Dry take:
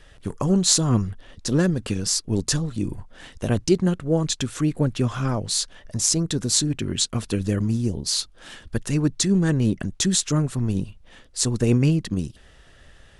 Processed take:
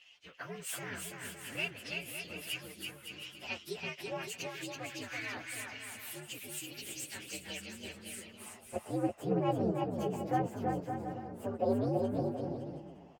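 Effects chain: frequency axis rescaled in octaves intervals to 125%; band-pass sweep 2.8 kHz -> 760 Hz, 8.06–8.57 s; bouncing-ball echo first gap 330 ms, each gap 0.7×, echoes 5; trim +4.5 dB

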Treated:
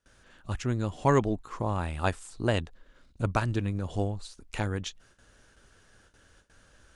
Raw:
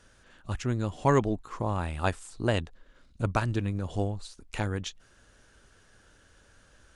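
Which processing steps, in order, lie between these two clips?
gate with hold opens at -49 dBFS

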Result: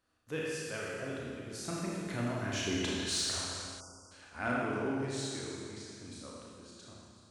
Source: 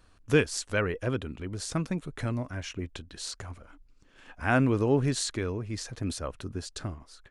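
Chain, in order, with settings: Doppler pass-by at 2.91 s, 14 m/s, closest 3.9 m; high-pass 200 Hz 6 dB/octave; Schroeder reverb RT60 2 s, combs from 26 ms, DRR -4.5 dB; spectral selection erased 3.80–4.12 s, 1.5–4.6 kHz; in parallel at -3 dB: saturation -33.5 dBFS, distortion -15 dB

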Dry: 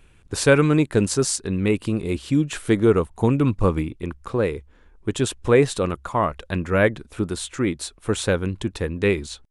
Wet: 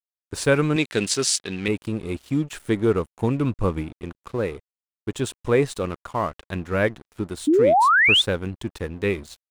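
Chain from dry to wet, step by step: crossover distortion -39 dBFS; 0.76–1.68 s: frequency weighting D; 7.47–8.22 s: painted sound rise 280–3700 Hz -13 dBFS; trim -3 dB

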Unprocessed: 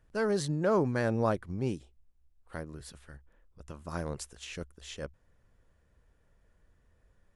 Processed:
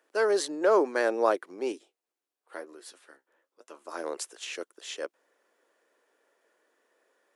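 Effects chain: steep high-pass 320 Hz 36 dB/octave; 1.72–4.04 s: flange 1 Hz, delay 6.7 ms, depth 8.6 ms, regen +47%; trim +5.5 dB

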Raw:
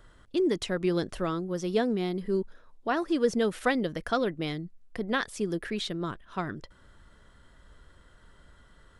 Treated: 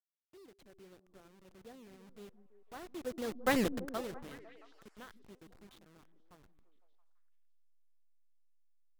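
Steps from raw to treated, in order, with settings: send-on-delta sampling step -27 dBFS; Doppler pass-by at 3.59 s, 18 m/s, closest 1.7 m; repeats whose band climbs or falls 168 ms, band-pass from 230 Hz, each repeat 0.7 oct, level -10 dB

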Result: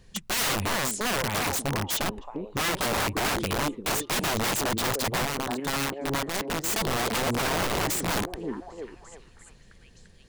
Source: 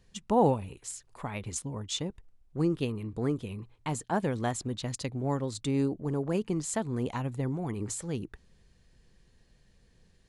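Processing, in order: 5.25–6.64 s: power-law waveshaper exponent 2; repeats whose band climbs or falls 344 ms, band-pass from 310 Hz, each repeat 0.7 oct, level -4.5 dB; integer overflow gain 30 dB; trim +8.5 dB

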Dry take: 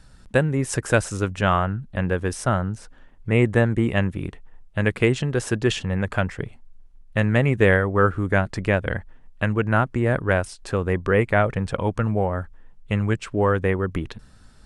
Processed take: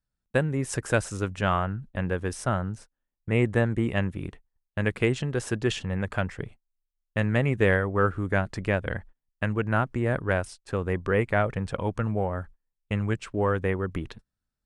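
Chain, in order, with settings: gate -36 dBFS, range -30 dB; Chebyshev shaper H 4 -39 dB, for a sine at -3 dBFS; trim -5 dB

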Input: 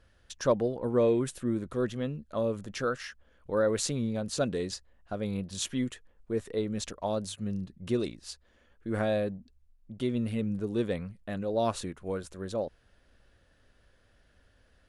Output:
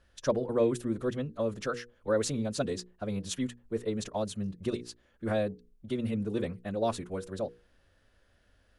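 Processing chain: time stretch by phase-locked vocoder 0.59×; hum notches 60/120/180/240/300/360/420/480 Hz

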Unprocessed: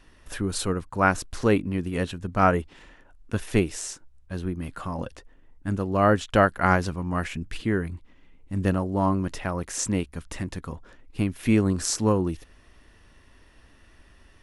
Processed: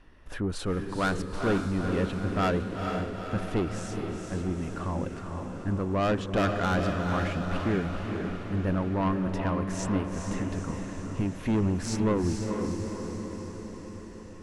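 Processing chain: low-pass 1.9 kHz 6 dB/octave; saturation -21.5 dBFS, distortion -8 dB; on a send: echo that smears into a reverb 456 ms, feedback 63%, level -4.5 dB

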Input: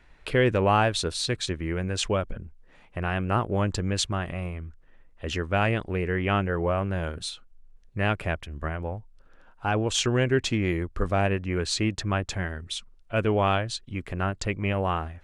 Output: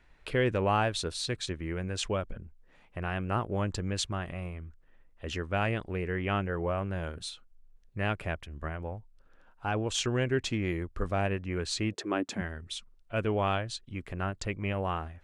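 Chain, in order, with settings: 11.92–12.40 s: resonant high-pass 460 Hz -> 210 Hz, resonance Q 4.9; trim -5.5 dB

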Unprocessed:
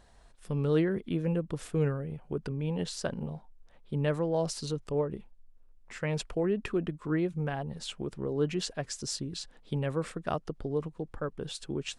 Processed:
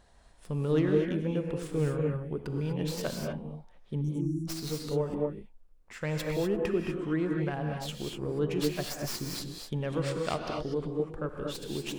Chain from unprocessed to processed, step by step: tracing distortion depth 0.13 ms; 4.01–4.48 s: spectral selection erased 350–5500 Hz; 9.92–10.72 s: peaking EQ 4.3 kHz +11 dB 1.4 oct; gated-style reverb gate 270 ms rising, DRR 1 dB; trim -1.5 dB

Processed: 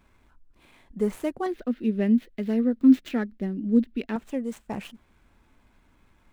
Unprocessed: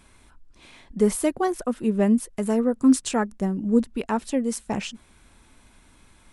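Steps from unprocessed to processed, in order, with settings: median filter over 9 samples; 1.46–4.16 s: graphic EQ 125/250/1000/2000/4000/8000 Hz -11/+9/-11/+6/+8/-12 dB; trim -5.5 dB

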